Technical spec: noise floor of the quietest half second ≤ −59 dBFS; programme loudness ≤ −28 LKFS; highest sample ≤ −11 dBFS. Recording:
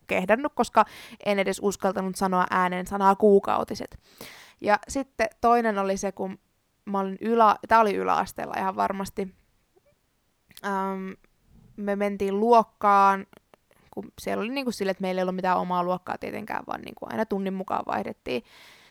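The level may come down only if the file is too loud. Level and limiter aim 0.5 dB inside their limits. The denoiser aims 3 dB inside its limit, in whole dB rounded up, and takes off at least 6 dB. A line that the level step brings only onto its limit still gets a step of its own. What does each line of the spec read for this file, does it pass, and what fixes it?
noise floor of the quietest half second −70 dBFS: in spec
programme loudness −25.0 LKFS: out of spec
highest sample −6.0 dBFS: out of spec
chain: level −3.5 dB
brickwall limiter −11.5 dBFS

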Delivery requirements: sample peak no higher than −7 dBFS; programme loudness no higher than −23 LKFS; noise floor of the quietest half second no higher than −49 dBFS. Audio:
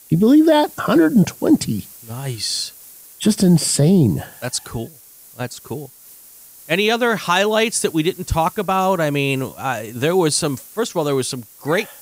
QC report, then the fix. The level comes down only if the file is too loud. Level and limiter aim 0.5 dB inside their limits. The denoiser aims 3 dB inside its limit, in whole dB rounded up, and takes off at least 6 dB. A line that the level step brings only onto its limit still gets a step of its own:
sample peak −5.0 dBFS: out of spec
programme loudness −18.0 LKFS: out of spec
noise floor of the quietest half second −44 dBFS: out of spec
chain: level −5.5 dB

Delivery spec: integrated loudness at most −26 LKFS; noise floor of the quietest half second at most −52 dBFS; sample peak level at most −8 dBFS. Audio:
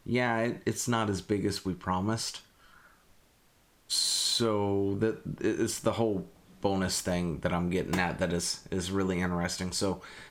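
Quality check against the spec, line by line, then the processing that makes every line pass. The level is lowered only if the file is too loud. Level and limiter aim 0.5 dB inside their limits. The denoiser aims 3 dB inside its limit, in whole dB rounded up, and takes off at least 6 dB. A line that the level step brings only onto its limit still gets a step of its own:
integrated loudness −30.5 LKFS: in spec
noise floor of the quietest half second −64 dBFS: in spec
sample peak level −14.0 dBFS: in spec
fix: no processing needed

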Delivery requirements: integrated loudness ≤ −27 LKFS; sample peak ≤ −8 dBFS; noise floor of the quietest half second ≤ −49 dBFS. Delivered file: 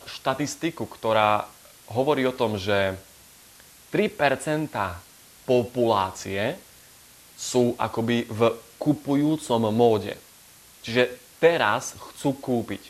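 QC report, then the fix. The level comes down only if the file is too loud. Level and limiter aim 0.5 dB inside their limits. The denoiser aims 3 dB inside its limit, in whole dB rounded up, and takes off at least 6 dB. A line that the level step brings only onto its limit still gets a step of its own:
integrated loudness −24.5 LKFS: out of spec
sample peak −5.0 dBFS: out of spec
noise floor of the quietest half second −51 dBFS: in spec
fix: level −3 dB
brickwall limiter −8.5 dBFS

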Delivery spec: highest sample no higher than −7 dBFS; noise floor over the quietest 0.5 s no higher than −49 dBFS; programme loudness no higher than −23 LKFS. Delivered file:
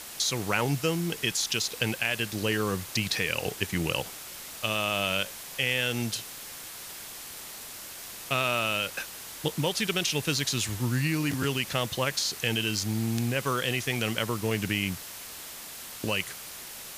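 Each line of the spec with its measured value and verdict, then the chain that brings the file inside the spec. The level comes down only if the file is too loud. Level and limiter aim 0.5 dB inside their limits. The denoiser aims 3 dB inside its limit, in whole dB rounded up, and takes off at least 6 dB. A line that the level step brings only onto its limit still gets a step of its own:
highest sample −10.0 dBFS: in spec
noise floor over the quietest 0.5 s −42 dBFS: out of spec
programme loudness −29.0 LKFS: in spec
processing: broadband denoise 10 dB, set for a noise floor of −42 dBFS

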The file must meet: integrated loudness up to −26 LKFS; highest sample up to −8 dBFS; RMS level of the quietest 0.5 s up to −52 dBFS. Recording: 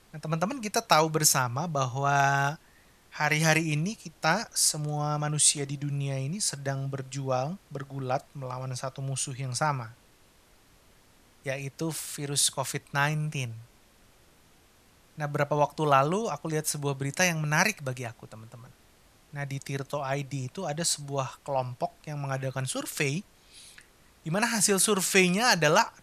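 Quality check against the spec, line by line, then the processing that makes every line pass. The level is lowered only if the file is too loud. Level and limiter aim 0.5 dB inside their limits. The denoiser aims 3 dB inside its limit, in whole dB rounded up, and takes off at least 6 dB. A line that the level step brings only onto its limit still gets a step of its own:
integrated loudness −27.5 LKFS: in spec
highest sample −6.0 dBFS: out of spec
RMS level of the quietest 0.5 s −60 dBFS: in spec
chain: brickwall limiter −8.5 dBFS

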